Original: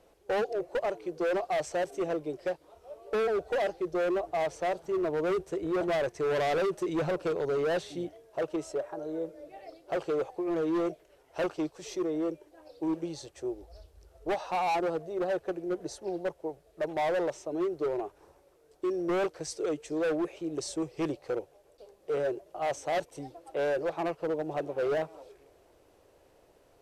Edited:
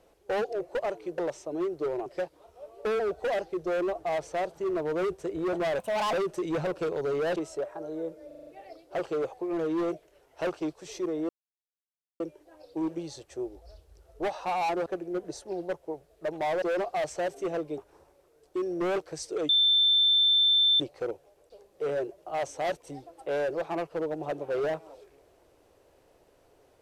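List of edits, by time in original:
0:01.18–0:02.34: swap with 0:17.18–0:18.06
0:06.07–0:06.57: play speed 147%
0:07.80–0:08.53: remove
0:09.44: stutter 0.04 s, 6 plays
0:12.26: splice in silence 0.91 s
0:14.92–0:15.42: remove
0:19.77–0:21.08: beep over 3,550 Hz −19 dBFS

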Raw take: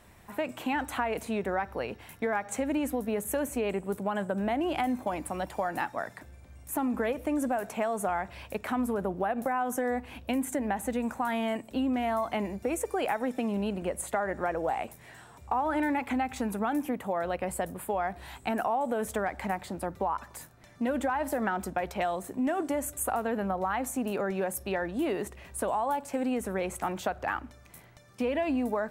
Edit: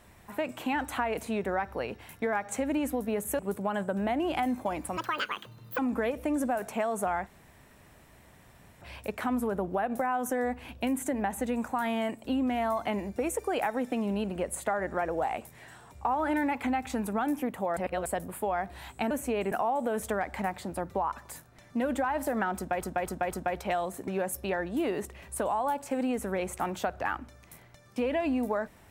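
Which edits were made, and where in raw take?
0:03.39–0:03.80: move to 0:18.57
0:05.38–0:06.80: play speed 174%
0:08.28: splice in room tone 1.55 s
0:17.23–0:17.52: reverse
0:21.62–0:21.87: repeat, 4 plays
0:22.38–0:24.30: remove

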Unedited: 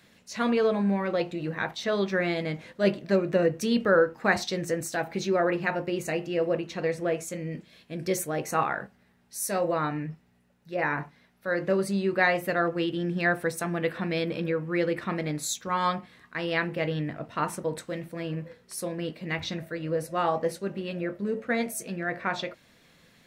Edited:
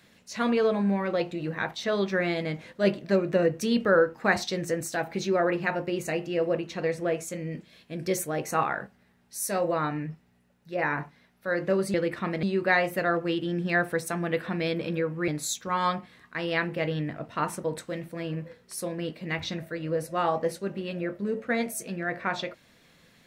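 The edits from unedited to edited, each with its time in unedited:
0:14.79–0:15.28: move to 0:11.94

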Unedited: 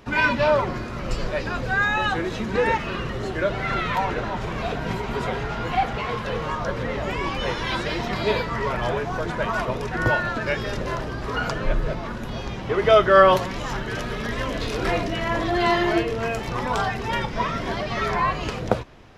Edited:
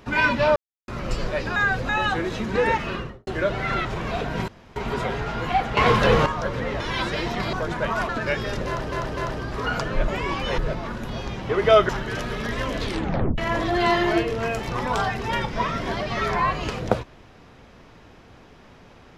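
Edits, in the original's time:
0:00.56–0:00.88: silence
0:01.56–0:01.89: reverse
0:02.90–0:03.27: fade out and dull
0:03.85–0:04.36: remove
0:04.99: splice in room tone 0.28 s
0:06.00–0:06.49: clip gain +10 dB
0:07.03–0:07.53: move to 0:11.78
0:08.26–0:09.11: remove
0:09.67–0:10.29: remove
0:10.87–0:11.12: repeat, 3 plays
0:13.09–0:13.69: remove
0:14.63: tape stop 0.55 s

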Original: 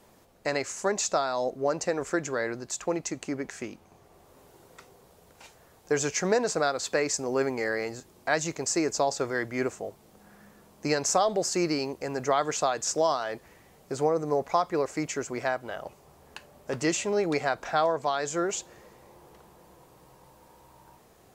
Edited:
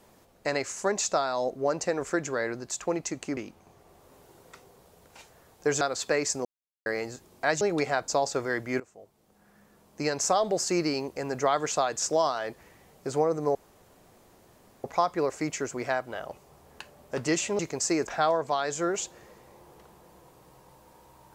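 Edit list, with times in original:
0:03.37–0:03.62: remove
0:06.06–0:06.65: remove
0:07.29–0:07.70: silence
0:08.45–0:08.93: swap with 0:17.15–0:17.62
0:09.65–0:11.34: fade in, from −20 dB
0:14.40: splice in room tone 1.29 s

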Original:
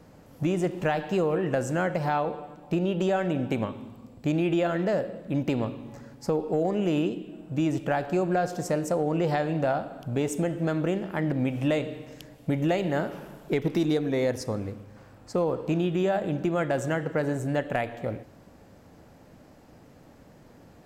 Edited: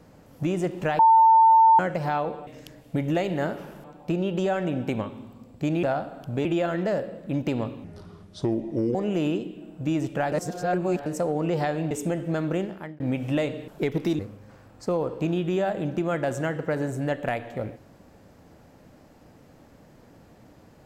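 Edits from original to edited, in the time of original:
0:00.99–0:01.79: beep over 897 Hz −12 dBFS
0:05.85–0:06.66: play speed 73%
0:08.03–0:08.77: reverse
0:09.62–0:10.24: move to 0:04.46
0:10.94–0:11.33: fade out
0:12.01–0:13.38: move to 0:02.47
0:13.89–0:14.66: remove

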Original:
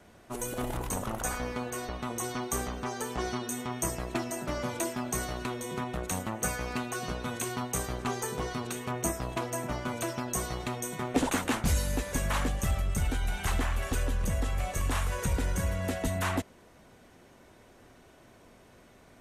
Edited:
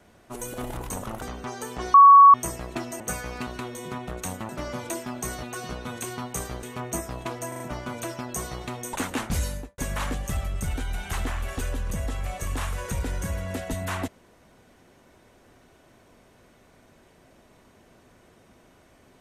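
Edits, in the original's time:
0:01.22–0:02.61: remove
0:03.33–0:03.73: beep over 1,120 Hz −7.5 dBFS
0:04.39–0:05.33: swap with 0:06.35–0:06.82
0:08.02–0:08.74: remove
0:09.59: stutter 0.04 s, 4 plays
0:10.92–0:11.27: remove
0:11.79–0:12.12: fade out and dull

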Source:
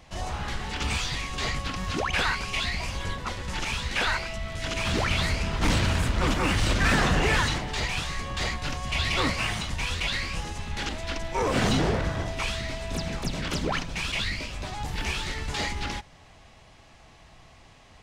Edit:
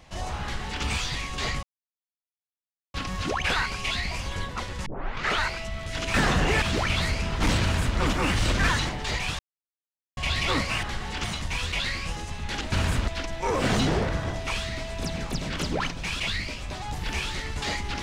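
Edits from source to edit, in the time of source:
0:00.42–0:00.83: duplicate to 0:09.52
0:01.63: splice in silence 1.31 s
0:03.55: tape start 0.55 s
0:05.83–0:06.19: duplicate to 0:11.00
0:06.89–0:07.37: move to 0:04.83
0:08.08–0:08.86: silence

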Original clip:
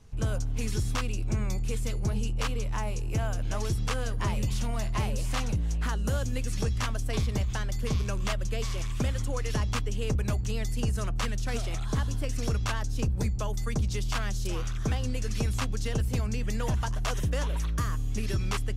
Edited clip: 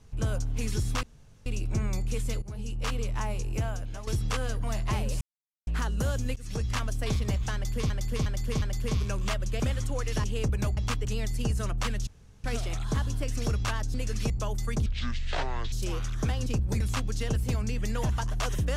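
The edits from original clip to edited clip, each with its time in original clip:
0:01.03: splice in room tone 0.43 s
0:01.99–0:02.51: fade in, from −16.5 dB
0:03.10–0:03.64: fade out, to −12 dB
0:04.21–0:04.71: remove
0:05.28–0:05.74: silence
0:06.43–0:06.89: fade in equal-power, from −20 dB
0:07.61–0:07.97: repeat, 4 plays
0:08.59–0:08.98: remove
0:09.62–0:09.90: move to 0:10.43
0:11.45: splice in room tone 0.37 s
0:12.95–0:13.29: swap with 0:15.09–0:15.45
0:13.85–0:14.35: play speed 58%

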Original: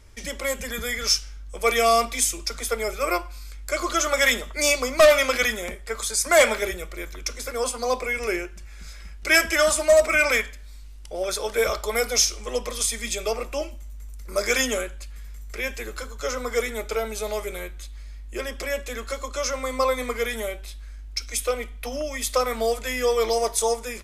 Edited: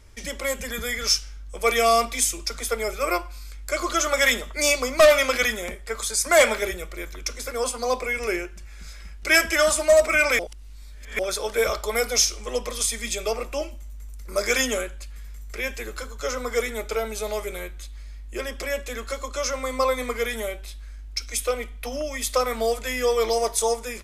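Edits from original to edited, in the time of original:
0:10.39–0:11.19: reverse

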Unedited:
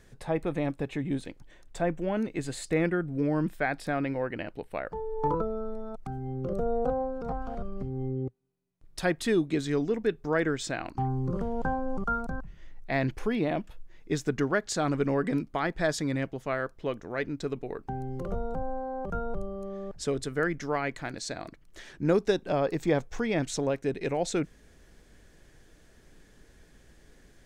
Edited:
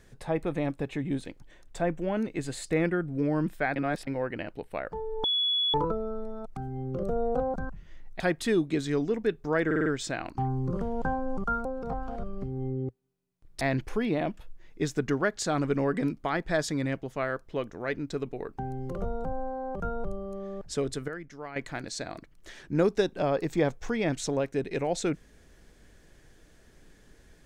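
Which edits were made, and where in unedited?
0:03.76–0:04.07: reverse
0:05.24: insert tone 3,390 Hz −23.5 dBFS 0.50 s
0:07.04–0:09.00: swap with 0:12.25–0:12.91
0:10.46: stutter 0.05 s, 5 plays
0:20.38–0:20.86: clip gain −11 dB

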